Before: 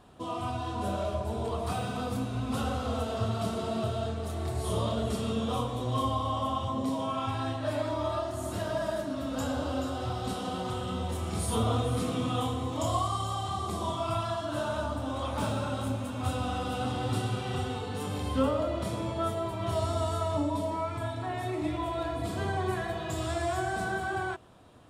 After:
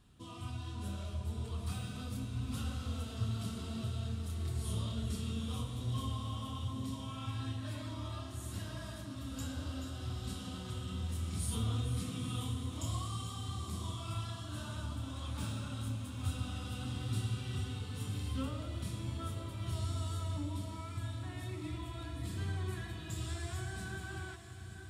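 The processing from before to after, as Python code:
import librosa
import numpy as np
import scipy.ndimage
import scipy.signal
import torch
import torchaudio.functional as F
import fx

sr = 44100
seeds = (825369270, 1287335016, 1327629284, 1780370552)

y = fx.tone_stack(x, sr, knobs='6-0-2')
y = fx.echo_diffused(y, sr, ms=920, feedback_pct=55, wet_db=-10.0)
y = F.gain(torch.from_numpy(y), 9.5).numpy()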